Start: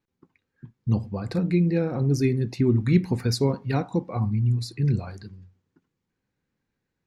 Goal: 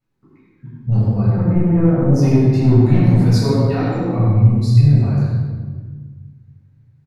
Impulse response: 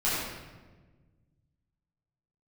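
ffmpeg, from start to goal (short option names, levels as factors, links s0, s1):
-filter_complex "[0:a]asettb=1/sr,asplit=3[s0][s1][s2];[s0]atrim=end=1.264[s3];[s1]atrim=start=1.26:end=2.12,asetpts=PTS-STARTPTS,afade=t=in:d=0.004:c=qsin,afade=t=out:st=0.856:d=0.004:c=qsin,lowpass=f=1800:w=0.5412,lowpass=f=1800:w=1.3066[s4];[s2]atrim=start=2.116[s5];[s3][s4]acrossfade=d=0.004:c1=hsin:c2=qsin[s6];[s6][s5]acrossfade=d=0.004:c1=qsin:c2=hsin,lowshelf=f=490:g=4,asettb=1/sr,asplit=3[s7][s8][s9];[s7]atrim=end=3.424[s10];[s8]atrim=start=3.42:end=4.1,asetpts=PTS-STARTPTS,afade=t=in:d=0.004:c=qsin,afade=t=out:st=0.676:d=0.004:c=qsin,highpass=f=180:w=0.5412,highpass=f=180:w=1.3066[s11];[s9]atrim=start=4.096[s12];[s10][s11]acrossfade=d=0.004:c1=hsin:c2=qsin[s13];[s13][s12]acrossfade=d=0.004:c1=qsin:c2=hsin,asoftclip=type=tanh:threshold=0.188,asplit=2[s14][s15];[s15]adelay=100,highpass=300,lowpass=3400,asoftclip=type=hard:threshold=0.126,volume=0.447[s16];[s14][s16]amix=inputs=2:normalize=0[s17];[1:a]atrim=start_sample=2205,asetrate=38808,aresample=44100[s18];[s17][s18]afir=irnorm=-1:irlink=0,volume=0.501"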